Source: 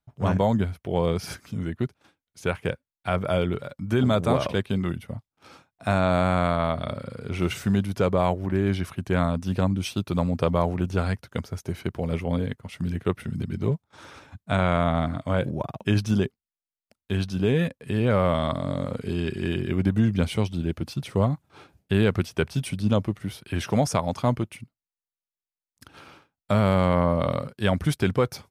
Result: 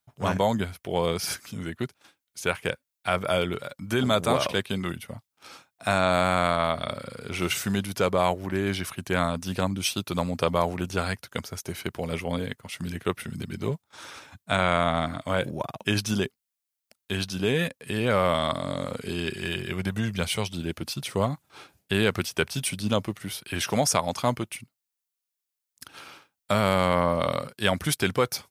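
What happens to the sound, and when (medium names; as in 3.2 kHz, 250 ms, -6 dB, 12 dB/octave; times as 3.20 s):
19.35–20.47 s: peaking EQ 280 Hz -10 dB 0.51 oct
whole clip: tilt EQ +2.5 dB/octave; trim +1.5 dB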